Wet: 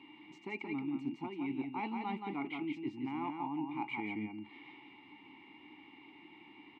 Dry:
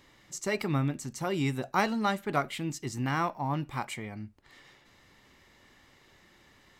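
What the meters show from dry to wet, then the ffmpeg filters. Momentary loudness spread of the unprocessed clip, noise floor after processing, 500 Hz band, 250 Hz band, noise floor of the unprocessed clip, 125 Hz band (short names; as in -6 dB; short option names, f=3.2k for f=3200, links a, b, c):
10 LU, -58 dBFS, -12.0 dB, -4.0 dB, -61 dBFS, -17.5 dB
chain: -filter_complex "[0:a]asplit=3[a][b][c];[a]bandpass=f=300:t=q:w=8,volume=0dB[d];[b]bandpass=f=870:t=q:w=8,volume=-6dB[e];[c]bandpass=f=2.24k:t=q:w=8,volume=-9dB[f];[d][e][f]amix=inputs=3:normalize=0,highshelf=f=4.6k:t=q:w=1.5:g=-12.5,areverse,acompressor=threshold=-51dB:ratio=10,areverse,aeval=exprs='val(0)+0.000158*sin(2*PI*2800*n/s)':c=same,highpass=82,asplit=2[g][h];[h]aecho=0:1:173:0.596[i];[g][i]amix=inputs=2:normalize=0,volume=14.5dB"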